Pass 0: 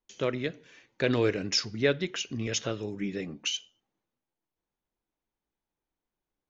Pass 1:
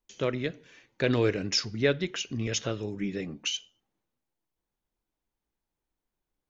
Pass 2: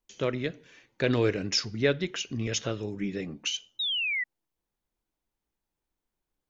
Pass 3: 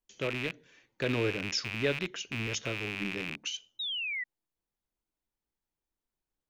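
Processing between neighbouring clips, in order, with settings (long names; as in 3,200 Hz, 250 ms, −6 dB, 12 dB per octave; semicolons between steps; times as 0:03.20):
low-shelf EQ 94 Hz +6.5 dB
sound drawn into the spectrogram fall, 0:03.79–0:04.24, 1,900–3,900 Hz −29 dBFS
loose part that buzzes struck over −42 dBFS, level −18 dBFS; level −5.5 dB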